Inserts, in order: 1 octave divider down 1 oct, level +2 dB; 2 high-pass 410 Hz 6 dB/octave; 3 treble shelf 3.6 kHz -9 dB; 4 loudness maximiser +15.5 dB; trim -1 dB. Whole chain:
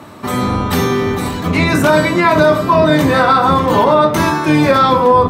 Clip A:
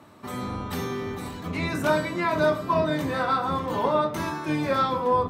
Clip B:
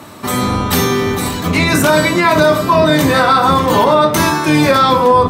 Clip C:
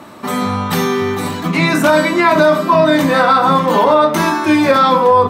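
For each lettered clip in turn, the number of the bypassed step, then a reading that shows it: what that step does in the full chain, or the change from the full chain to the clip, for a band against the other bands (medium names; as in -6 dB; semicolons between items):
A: 4, crest factor change +5.0 dB; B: 3, 8 kHz band +7.0 dB; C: 1, 125 Hz band -4.5 dB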